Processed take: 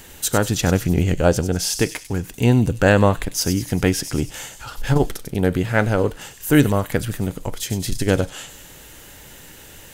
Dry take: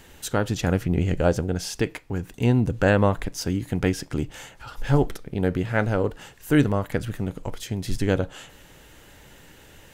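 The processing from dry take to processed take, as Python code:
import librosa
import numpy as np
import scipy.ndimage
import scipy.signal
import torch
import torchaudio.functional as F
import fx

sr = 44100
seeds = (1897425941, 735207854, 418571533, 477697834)

y = fx.high_shelf(x, sr, hz=5400.0, db=9.5)
y = fx.echo_wet_highpass(y, sr, ms=97, feedback_pct=51, hz=4300.0, wet_db=-7)
y = fx.transformer_sat(y, sr, knee_hz=120.0)
y = F.gain(torch.from_numpy(y), 4.5).numpy()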